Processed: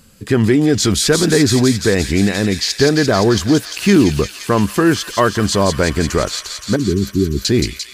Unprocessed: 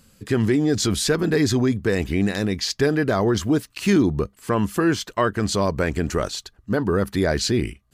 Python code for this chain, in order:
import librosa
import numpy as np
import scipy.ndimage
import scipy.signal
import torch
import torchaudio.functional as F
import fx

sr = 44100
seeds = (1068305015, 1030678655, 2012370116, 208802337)

y = fx.brickwall_bandstop(x, sr, low_hz=420.0, high_hz=11000.0, at=(6.76, 7.45))
y = fx.echo_wet_highpass(y, sr, ms=173, feedback_pct=80, hz=2800.0, wet_db=-4.0)
y = F.gain(torch.from_numpy(y), 6.5).numpy()